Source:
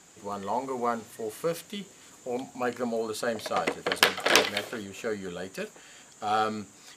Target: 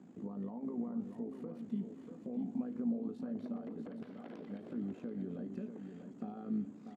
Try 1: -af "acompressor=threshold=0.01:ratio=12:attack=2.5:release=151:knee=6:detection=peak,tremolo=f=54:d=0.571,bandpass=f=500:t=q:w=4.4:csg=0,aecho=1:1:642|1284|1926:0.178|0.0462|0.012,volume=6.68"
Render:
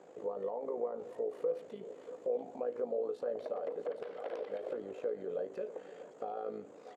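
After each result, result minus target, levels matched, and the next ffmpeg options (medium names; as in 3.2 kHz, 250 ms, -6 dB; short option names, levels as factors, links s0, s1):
250 Hz band -15.5 dB; echo-to-direct -7 dB
-af "acompressor=threshold=0.01:ratio=12:attack=2.5:release=151:knee=6:detection=peak,tremolo=f=54:d=0.571,bandpass=f=230:t=q:w=4.4:csg=0,aecho=1:1:642|1284|1926:0.178|0.0462|0.012,volume=6.68"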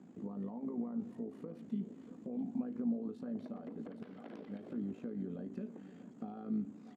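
echo-to-direct -7 dB
-af "acompressor=threshold=0.01:ratio=12:attack=2.5:release=151:knee=6:detection=peak,tremolo=f=54:d=0.571,bandpass=f=230:t=q:w=4.4:csg=0,aecho=1:1:642|1284|1926:0.398|0.104|0.0269,volume=6.68"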